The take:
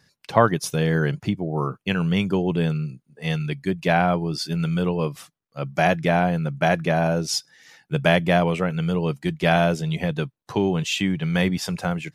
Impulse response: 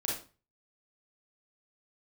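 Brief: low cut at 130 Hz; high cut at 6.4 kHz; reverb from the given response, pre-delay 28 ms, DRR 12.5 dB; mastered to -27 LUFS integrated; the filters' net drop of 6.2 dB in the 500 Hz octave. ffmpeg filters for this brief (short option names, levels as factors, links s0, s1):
-filter_complex "[0:a]highpass=130,lowpass=6400,equalizer=f=500:t=o:g=-8.5,asplit=2[s0][s1];[1:a]atrim=start_sample=2205,adelay=28[s2];[s1][s2]afir=irnorm=-1:irlink=0,volume=0.141[s3];[s0][s3]amix=inputs=2:normalize=0,volume=0.841"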